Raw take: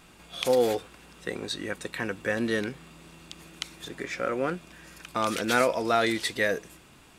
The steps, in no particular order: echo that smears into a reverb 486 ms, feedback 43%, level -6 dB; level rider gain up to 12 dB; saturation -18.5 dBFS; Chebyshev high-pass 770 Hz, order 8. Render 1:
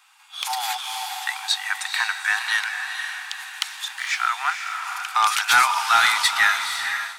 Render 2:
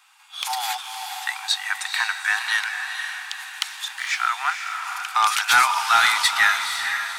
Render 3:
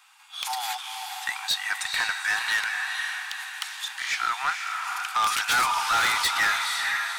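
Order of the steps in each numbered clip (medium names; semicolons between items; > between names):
Chebyshev high-pass > saturation > echo that smears into a reverb > level rider; Chebyshev high-pass > saturation > level rider > echo that smears into a reverb; Chebyshev high-pass > level rider > echo that smears into a reverb > saturation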